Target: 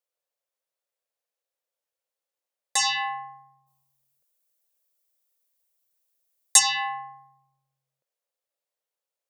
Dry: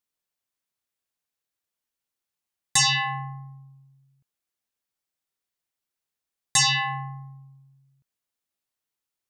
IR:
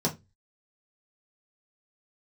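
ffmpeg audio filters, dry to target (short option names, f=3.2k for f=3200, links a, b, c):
-filter_complex "[0:a]highpass=f=530:t=q:w=4.9,asplit=3[a][b][c];[a]afade=t=out:st=3.66:d=0.02[d];[b]aemphasis=mode=production:type=75kf,afade=t=in:st=3.66:d=0.02,afade=t=out:st=6.58:d=0.02[e];[c]afade=t=in:st=6.58:d=0.02[f];[d][e][f]amix=inputs=3:normalize=0,volume=-4dB"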